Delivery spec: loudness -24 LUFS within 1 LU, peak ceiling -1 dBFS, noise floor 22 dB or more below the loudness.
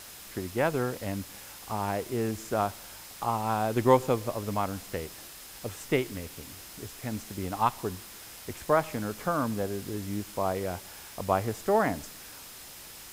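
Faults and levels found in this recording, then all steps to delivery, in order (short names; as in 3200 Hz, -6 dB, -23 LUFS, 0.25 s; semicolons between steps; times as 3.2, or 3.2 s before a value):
steady tone 5100 Hz; tone level -58 dBFS; noise floor -46 dBFS; noise floor target -53 dBFS; loudness -30.5 LUFS; peak -8.0 dBFS; loudness target -24.0 LUFS
-> notch 5100 Hz, Q 30; denoiser 7 dB, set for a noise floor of -46 dBFS; gain +6.5 dB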